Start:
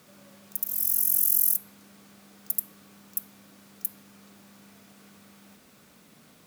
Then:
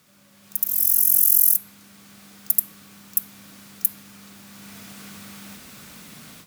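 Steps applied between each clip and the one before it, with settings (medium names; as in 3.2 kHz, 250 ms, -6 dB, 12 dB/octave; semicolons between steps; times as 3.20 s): level rider gain up to 16 dB; peaking EQ 470 Hz -8 dB 2.2 oct; trim -1 dB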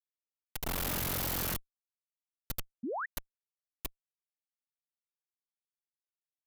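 Schmitt trigger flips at -23 dBFS; painted sound rise, 2.83–3.06 s, 210–2000 Hz -27 dBFS; trim -8.5 dB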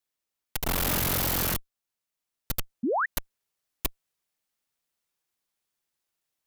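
in parallel at +1 dB: peak limiter -34.5 dBFS, peak gain reduction 7 dB; on the sum: gain riding 2 s; trim +4 dB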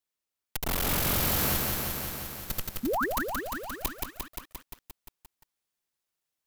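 bit-crushed delay 175 ms, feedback 80%, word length 8-bit, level -3 dB; trim -2.5 dB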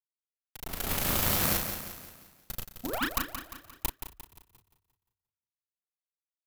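power-law waveshaper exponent 3; doubling 35 ms -5 dB; frequency-shifting echo 236 ms, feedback 50%, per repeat +31 Hz, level -23 dB; trim +6 dB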